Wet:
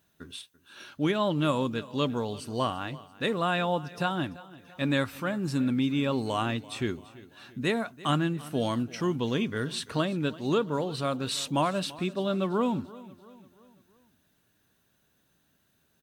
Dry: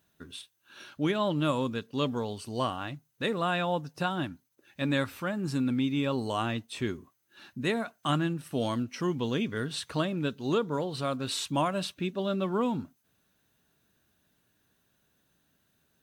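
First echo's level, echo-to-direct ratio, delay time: -19.5 dB, -18.5 dB, 0.338 s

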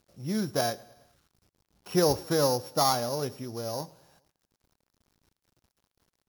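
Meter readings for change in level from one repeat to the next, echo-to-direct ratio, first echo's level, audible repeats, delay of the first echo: -5.0 dB, -22.0 dB, -23.5 dB, 3, 0.108 s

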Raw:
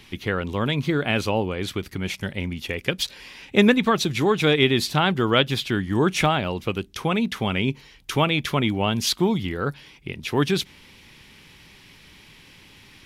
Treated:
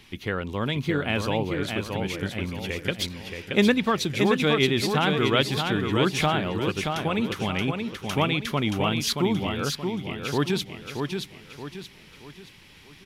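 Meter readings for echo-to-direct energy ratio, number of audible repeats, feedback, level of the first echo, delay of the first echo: -4.5 dB, 4, 39%, -5.0 dB, 0.626 s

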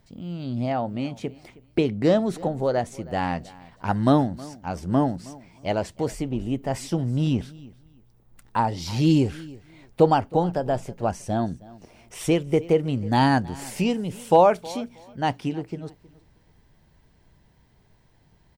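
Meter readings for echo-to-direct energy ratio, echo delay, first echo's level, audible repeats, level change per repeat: -21.0 dB, 0.317 s, -21.0 dB, 2, -13.5 dB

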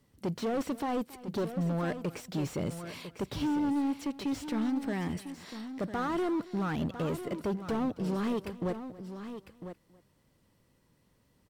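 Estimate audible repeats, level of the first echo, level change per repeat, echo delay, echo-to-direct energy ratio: 3, -19.0 dB, no steady repeat, 0.277 s, -10.0 dB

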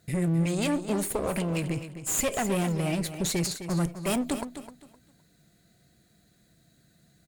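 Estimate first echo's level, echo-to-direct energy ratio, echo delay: -11.0 dB, -10.5 dB, 0.258 s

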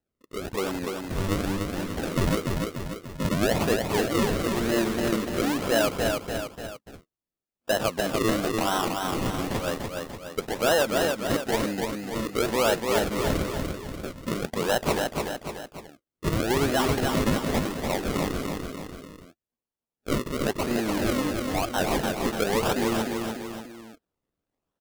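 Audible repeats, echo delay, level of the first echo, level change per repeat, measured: 3, 0.293 s, -4.0 dB, -6.0 dB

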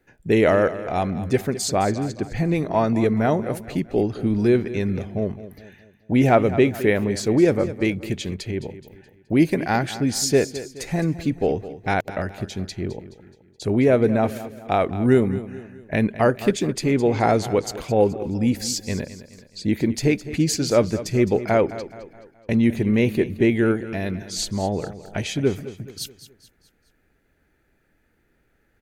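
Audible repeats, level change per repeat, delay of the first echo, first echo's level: 3, -7.0 dB, 0.212 s, -14.5 dB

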